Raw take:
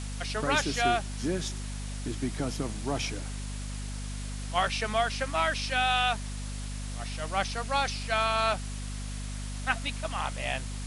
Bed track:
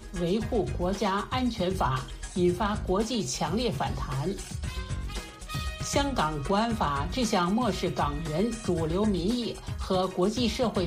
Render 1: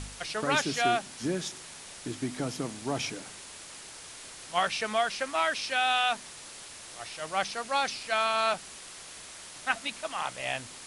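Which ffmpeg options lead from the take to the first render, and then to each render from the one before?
-af "bandreject=f=50:t=h:w=4,bandreject=f=100:t=h:w=4,bandreject=f=150:t=h:w=4,bandreject=f=200:t=h:w=4,bandreject=f=250:t=h:w=4"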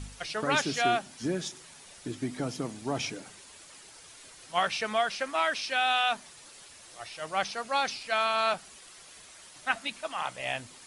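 -af "afftdn=nr=8:nf=-46"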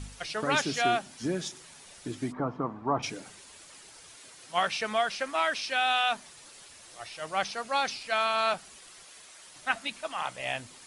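-filter_complex "[0:a]asplit=3[a][b][c];[a]afade=t=out:st=2.31:d=0.02[d];[b]lowpass=f=1.1k:t=q:w=4.1,afade=t=in:st=2.31:d=0.02,afade=t=out:st=3.02:d=0.02[e];[c]afade=t=in:st=3.02:d=0.02[f];[d][e][f]amix=inputs=3:normalize=0,asettb=1/sr,asplit=3[g][h][i];[g]atrim=end=4.164[j];[h]atrim=start=4.16:end=4.81,asetpts=PTS-STARTPTS,afade=t=in:d=0.004:c=qsin,afade=t=out:st=0.646:d=0.004:c=qsin,highpass=100[k];[i]atrim=start=4.806[l];[j][k]acrossfade=d=0.004:c1=hsin:c2=qsin[m];[m][l]acrossfade=d=0.004:c1=qsin:c2=hsin,asettb=1/sr,asplit=3[n][o][p];[n]atrim=end=9.044[q];[o]atrim=start=9.04:end=9.48,asetpts=PTS-STARTPTS,afade=t=in:d=0.004:c=qsin,afade=t=out:st=0.436:d=0.004:c=qsin,lowshelf=f=180:g=-11[r];[p]atrim=start=9.476[s];[q][r]acrossfade=d=0.004:c1=hsin:c2=qsin[t];[t][s]acrossfade=d=0.004:c1=qsin:c2=hsin"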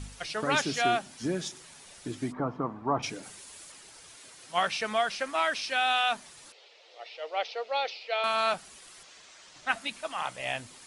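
-filter_complex "[0:a]asettb=1/sr,asplit=3[a][b][c];[a]atrim=end=3.234[d];[b]atrim=start=3.23:end=3.72,asetpts=PTS-STARTPTS,afade=t=in:d=0.004:c=qsin,afade=t=out:st=0.486:d=0.004:c=qsin,highshelf=f=8.8k:g=9.5[e];[c]atrim=start=3.716[f];[d][e]acrossfade=d=0.004:c1=hsin:c2=qsin[g];[g][f]acrossfade=d=0.004:c1=qsin:c2=hsin,asettb=1/sr,asplit=3[h][i][j];[h]atrim=end=6.524[k];[i]atrim=start=6.52:end=8.24,asetpts=PTS-STARTPTS,afade=t=in:d=0.004:c=qsin,afade=t=out:st=1.716:d=0.004:c=qsin,highpass=f=450:w=0.5412,highpass=f=450:w=1.3066,equalizer=f=470:t=q:w=4:g=9,equalizer=f=1.1k:t=q:w=4:g=-9,equalizer=f=1.6k:t=q:w=4:g=-10,lowpass=f=4.3k:w=0.5412,lowpass=f=4.3k:w=1.3066[l];[j]atrim=start=8.236[m];[k][l]acrossfade=d=0.004:c1=hsin:c2=qsin[n];[n][m]acrossfade=d=0.004:c1=qsin:c2=hsin,asettb=1/sr,asplit=3[o][p][q];[o]atrim=end=9.034[r];[p]atrim=start=9.03:end=9.69,asetpts=PTS-STARTPTS,afade=t=in:d=0.004:c=qsin,afade=t=out:st=0.656:d=0.004:c=qsin,lowpass=f=7.1k:w=0.5412,lowpass=f=7.1k:w=1.3066[s];[q]atrim=start=9.686[t];[r][s]acrossfade=d=0.004:c1=hsin:c2=qsin[u];[u][t]acrossfade=d=0.004:c1=qsin:c2=hsin"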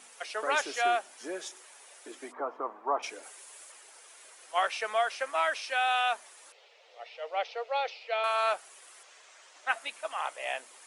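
-af "highpass=f=430:w=0.5412,highpass=f=430:w=1.3066,equalizer=f=4.4k:t=o:w=1.1:g=-7"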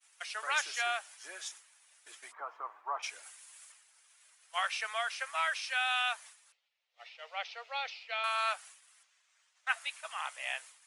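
-af "agate=range=-33dB:threshold=-45dB:ratio=3:detection=peak,highpass=1.3k"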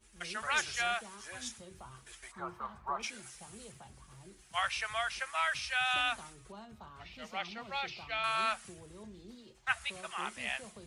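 -filter_complex "[1:a]volume=-24.5dB[a];[0:a][a]amix=inputs=2:normalize=0"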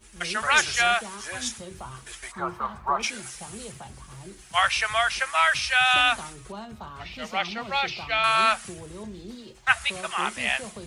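-af "volume=11.5dB"

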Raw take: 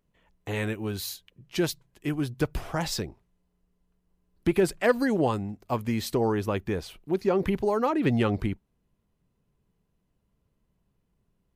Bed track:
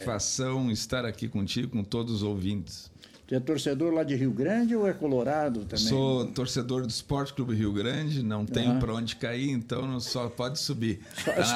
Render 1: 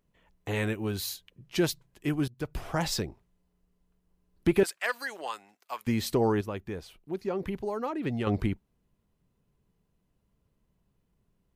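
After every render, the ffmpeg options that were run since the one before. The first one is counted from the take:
-filter_complex "[0:a]asettb=1/sr,asplit=3[a][b][c];[a]atrim=end=4.634[d];[b]atrim=start=4.63:end=5.87,asetpts=PTS-STARTPTS,afade=t=in:d=0.004:c=qsin,afade=t=out:st=1.236:d=0.004:c=qsin,highpass=1.2k[e];[c]atrim=start=5.866[f];[d][e]acrossfade=d=0.004:c1=hsin:c2=qsin[g];[g][f]acrossfade=d=0.004:c1=qsin:c2=hsin,asplit=4[h][i][j][k];[h]atrim=end=2.28,asetpts=PTS-STARTPTS,afade=t=out:st=2.276:d=0.004:c=hsin:silence=0.105925[l];[i]atrim=start=2.28:end=6.412,asetpts=PTS-STARTPTS,afade=t=in:d=0.48:silence=0.105925[m];[j]atrim=start=6.408:end=8.272,asetpts=PTS-STARTPTS,volume=-7.5dB[n];[k]atrim=start=8.268[o];[l][m]concat=n=2:v=0:a=1[p];[p][n]acrossfade=d=0.004:c1=hsin:c2=hsin[q];[q][o]acrossfade=d=0.004:c1=hsin:c2=hsin"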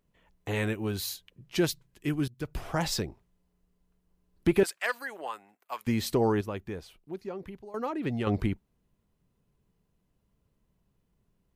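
-filter_complex "[0:a]asettb=1/sr,asplit=3[a][b][c];[a]atrim=end=1.654[d];[b]atrim=start=1.65:end=2.48,asetpts=PTS-STARTPTS,afade=t=in:d=0.004:c=qsin,afade=t=out:st=0.826:d=0.004:c=qsin,equalizer=f=750:t=o:w=1.2:g=-5.5[e];[c]atrim=start=2.476[f];[d][e]acrossfade=d=0.004:c1=hsin:c2=qsin[g];[g][f]acrossfade=d=0.004:c1=qsin:c2=hsin,asettb=1/sr,asplit=3[h][i][j];[h]atrim=end=4.994[k];[i]atrim=start=4.99:end=5.72,asetpts=PTS-STARTPTS,afade=t=in:d=0.004:c=qsin,afade=t=out:st=0.726:d=0.004:c=qsin,equalizer=f=5.2k:w=0.88:g=-12.5[l];[j]atrim=start=5.716[m];[k][l]acrossfade=d=0.004:c1=hsin:c2=qsin[n];[n][m]acrossfade=d=0.004:c1=qsin:c2=hsin,asplit=2[o][p];[o]atrim=end=7.74,asetpts=PTS-STARTPTS,afade=t=out:st=6.62:d=1.12:silence=0.16788[q];[p]atrim=start=7.74,asetpts=PTS-STARTPTS,afade=t=in:d=0.004:c=hsin:silence=0.16788[r];[q][r]concat=n=2:v=0:a=1"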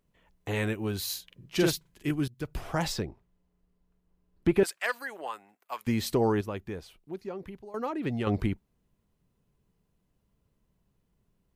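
-filter_complex "[0:a]asettb=1/sr,asplit=3[a][b][c];[a]atrim=end=1.054[d];[b]atrim=start=1.05:end=2.11,asetpts=PTS-STARTPTS,afade=t=in:d=0.004:c=qsin,afade=t=out:st=1.056:d=0.004:c=qsin,asplit=2[e][f];[f]adelay=44,volume=-2dB[g];[e][g]amix=inputs=2:normalize=0,atrim=end_sample=46746[h];[c]atrim=start=2.106[i];[d][h]acrossfade=d=0.004:c1=hsin:c2=qsin[j];[j][i]acrossfade=d=0.004:c1=qsin:c2=hsin,asettb=1/sr,asplit=3[k][l][m];[k]atrim=end=2.924[n];[l]atrim=start=2.92:end=4.63,asetpts=PTS-STARTPTS,afade=t=in:d=0.004:c=qsin,afade=t=out:st=1.706:d=0.004:c=qsin,highshelf=f=4.1k:g=-9.5[o];[m]atrim=start=4.626[p];[n][o]acrossfade=d=0.004:c1=hsin:c2=qsin[q];[q][p]acrossfade=d=0.004:c1=qsin:c2=hsin"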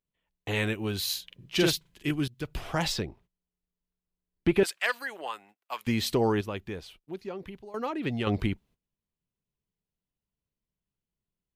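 -af "agate=range=-18dB:threshold=-56dB:ratio=16:detection=peak,equalizer=f=3.2k:w=1.1:g=7"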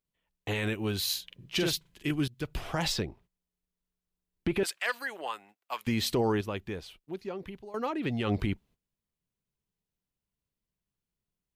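-af "alimiter=limit=-18.5dB:level=0:latency=1:release=40"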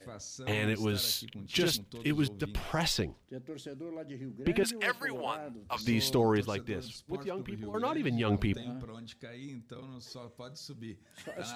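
-filter_complex "[1:a]volume=-15.5dB[a];[0:a][a]amix=inputs=2:normalize=0"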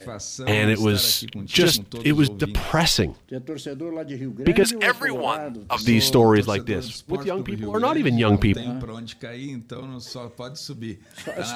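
-af "volume=11.5dB"

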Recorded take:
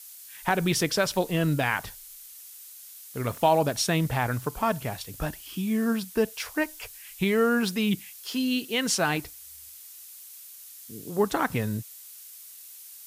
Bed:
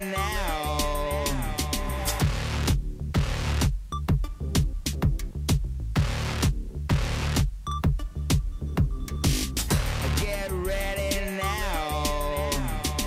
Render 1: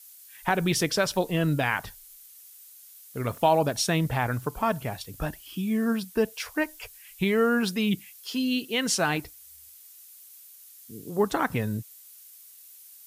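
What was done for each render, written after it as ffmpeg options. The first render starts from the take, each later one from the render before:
-af "afftdn=nr=6:nf=-46"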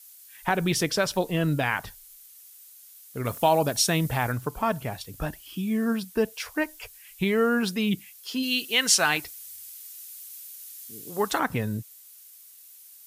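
-filter_complex "[0:a]asettb=1/sr,asplit=3[a][b][c];[a]atrim=end=3.254[d];[b]atrim=start=3.25:end=4.32,asetpts=PTS-STARTPTS,afade=t=in:d=0.004:c=qsin,afade=t=out:st=1.066:d=0.004:c=qsin,highshelf=f=5k:g=7.5[e];[c]atrim=start=4.316[f];[d][e]acrossfade=d=0.004:c1=hsin:c2=qsin[g];[g][f]acrossfade=d=0.004:c1=qsin:c2=hsin,asplit=3[h][i][j];[h]afade=t=out:st=8.42:d=0.02[k];[i]tiltshelf=f=680:g=-7,afade=t=in:st=8.42:d=0.02,afade=t=out:st=11.38:d=0.02[l];[j]afade=t=in:st=11.38:d=0.02[m];[k][l][m]amix=inputs=3:normalize=0"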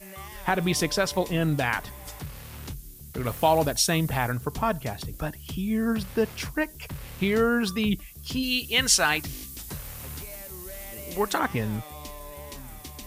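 -filter_complex "[1:a]volume=-14dB[a];[0:a][a]amix=inputs=2:normalize=0"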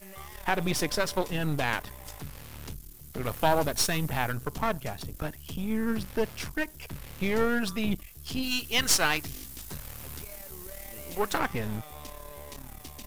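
-af "aeval=exprs='if(lt(val(0),0),0.251*val(0),val(0))':c=same"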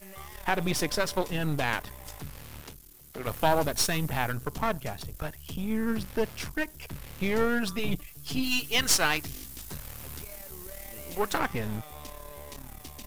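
-filter_complex "[0:a]asettb=1/sr,asplit=3[a][b][c];[a]atrim=end=2.614[d];[b]atrim=start=2.61:end=3.27,asetpts=PTS-STARTPTS,afade=t=in:d=0.004:c=qsin,afade=t=out:st=0.656:d=0.004:c=qsin,bass=f=250:g=-10,treble=f=4k:g=-2[e];[c]atrim=start=3.266[f];[d][e]acrossfade=d=0.004:c1=hsin:c2=qsin[g];[g][f]acrossfade=d=0.004:c1=qsin:c2=hsin,asettb=1/sr,asplit=3[h][i][j];[h]atrim=end=5.024[k];[i]atrim=start=5.02:end=5.49,asetpts=PTS-STARTPTS,afade=t=in:d=0.004:c=qsin,afade=t=out:st=0.466:d=0.004:c=qsin,equalizer=f=260:t=o:w=0.8:g=-8.5[l];[j]atrim=start=5.486[m];[k][l]acrossfade=d=0.004:c1=hsin:c2=qsin[n];[n][m]acrossfade=d=0.004:c1=qsin:c2=hsin,asettb=1/sr,asplit=3[o][p][q];[o]atrim=end=7.784[r];[p]atrim=start=7.78:end=8.76,asetpts=PTS-STARTPTS,afade=t=in:d=0.004:c=qsin,afade=t=out:st=0.976:d=0.004:c=qsin,aecho=1:1:6.9:0.65,atrim=end_sample=43218[s];[q]atrim=start=8.756[t];[r][s]acrossfade=d=0.004:c1=hsin:c2=qsin[u];[u][t]acrossfade=d=0.004:c1=qsin:c2=hsin"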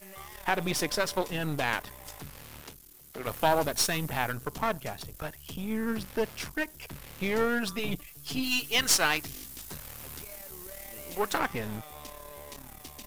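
-af "lowshelf=f=160:g=-7"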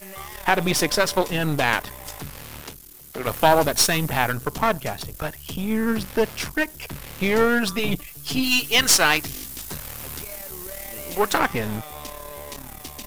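-af "volume=8.5dB,alimiter=limit=-2dB:level=0:latency=1"

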